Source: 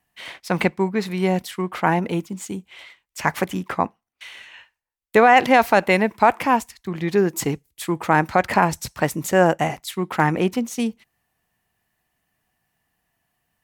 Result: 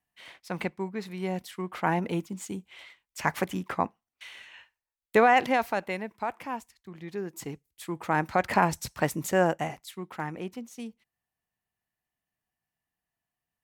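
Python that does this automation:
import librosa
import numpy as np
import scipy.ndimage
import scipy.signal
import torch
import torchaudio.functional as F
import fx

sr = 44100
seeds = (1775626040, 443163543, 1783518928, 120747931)

y = fx.gain(x, sr, db=fx.line((1.18, -12.0), (2.09, -6.0), (5.22, -6.0), (6.01, -16.5), (7.21, -16.5), (8.57, -5.5), (9.22, -5.5), (10.25, -16.0)))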